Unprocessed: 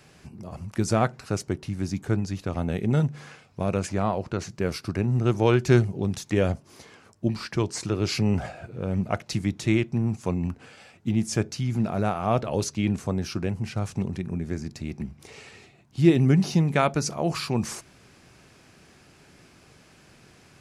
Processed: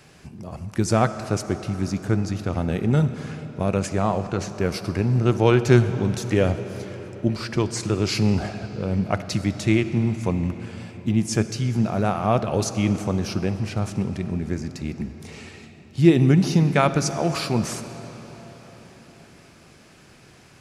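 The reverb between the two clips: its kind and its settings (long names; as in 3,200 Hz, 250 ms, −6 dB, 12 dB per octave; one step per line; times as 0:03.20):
comb and all-pass reverb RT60 4.9 s, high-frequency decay 0.75×, pre-delay 20 ms, DRR 10.5 dB
level +3 dB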